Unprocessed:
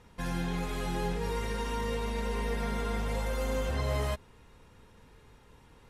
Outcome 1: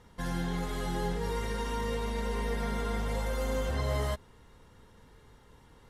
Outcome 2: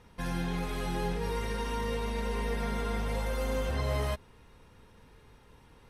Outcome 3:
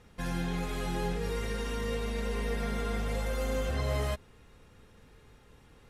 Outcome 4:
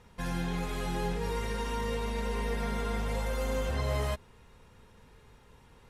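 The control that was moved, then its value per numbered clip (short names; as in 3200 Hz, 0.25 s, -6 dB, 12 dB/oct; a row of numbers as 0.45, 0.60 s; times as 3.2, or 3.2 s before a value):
notch, frequency: 2500, 7100, 950, 300 Hz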